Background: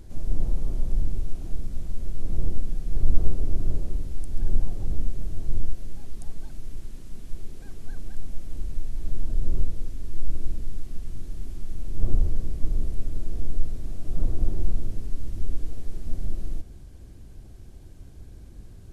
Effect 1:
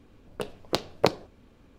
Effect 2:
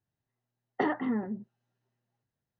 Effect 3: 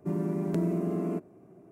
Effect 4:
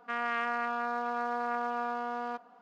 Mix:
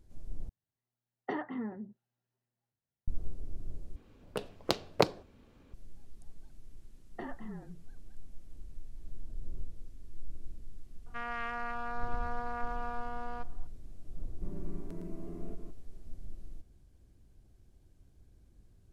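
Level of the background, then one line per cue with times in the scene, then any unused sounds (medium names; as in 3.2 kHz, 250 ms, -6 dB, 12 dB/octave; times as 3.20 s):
background -16.5 dB
0.49 s: replace with 2 -7.5 dB
3.96 s: replace with 1 -3.5 dB
6.39 s: add 2 -14 dB + frequency shift -40 Hz
11.06 s: add 4 -6 dB
14.36 s: add 3 -16.5 dB + chunks repeated in reverse 150 ms, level -5 dB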